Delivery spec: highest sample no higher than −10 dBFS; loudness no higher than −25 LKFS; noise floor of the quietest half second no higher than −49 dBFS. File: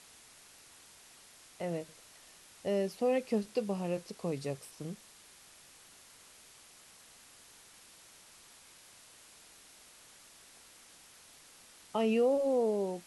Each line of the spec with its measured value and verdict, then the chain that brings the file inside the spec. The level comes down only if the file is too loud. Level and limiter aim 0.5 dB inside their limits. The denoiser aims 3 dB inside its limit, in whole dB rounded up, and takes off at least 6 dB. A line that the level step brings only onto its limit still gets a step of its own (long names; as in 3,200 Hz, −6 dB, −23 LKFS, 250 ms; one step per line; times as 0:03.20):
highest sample −19.0 dBFS: in spec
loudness −33.5 LKFS: in spec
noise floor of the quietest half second −58 dBFS: in spec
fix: no processing needed